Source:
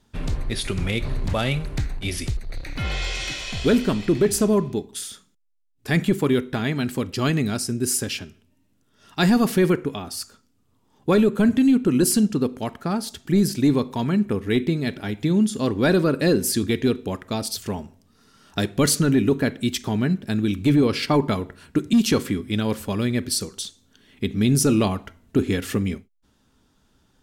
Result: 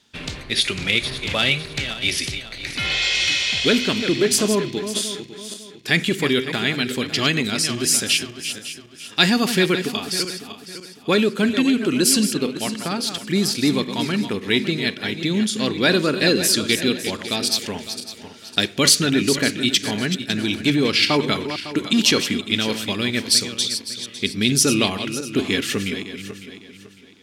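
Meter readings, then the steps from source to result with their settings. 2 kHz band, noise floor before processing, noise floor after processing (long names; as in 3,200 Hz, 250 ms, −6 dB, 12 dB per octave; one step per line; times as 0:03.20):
+8.5 dB, −64 dBFS, −43 dBFS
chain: feedback delay that plays each chunk backwards 277 ms, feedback 56%, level −9.5 dB
meter weighting curve D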